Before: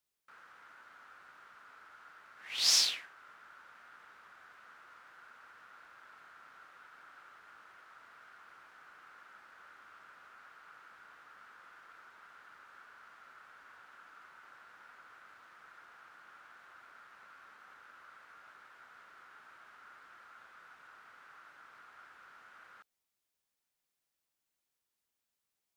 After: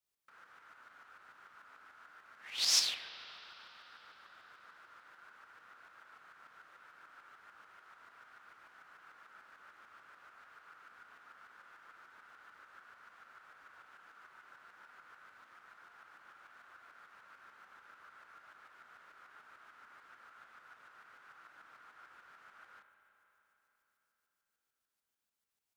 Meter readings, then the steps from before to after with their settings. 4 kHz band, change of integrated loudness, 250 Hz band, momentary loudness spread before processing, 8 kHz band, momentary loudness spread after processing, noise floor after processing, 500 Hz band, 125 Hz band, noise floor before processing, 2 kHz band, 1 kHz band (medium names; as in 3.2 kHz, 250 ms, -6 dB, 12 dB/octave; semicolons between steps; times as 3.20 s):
-2.5 dB, -5.5 dB, -2.0 dB, 17 LU, -2.0 dB, 24 LU, under -85 dBFS, -2.0 dB, -2.0 dB, under -85 dBFS, -2.0 dB, -2.0 dB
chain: tremolo saw up 6.8 Hz, depth 55%; spring tank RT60 3.9 s, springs 31/35 ms, chirp 40 ms, DRR 7.5 dB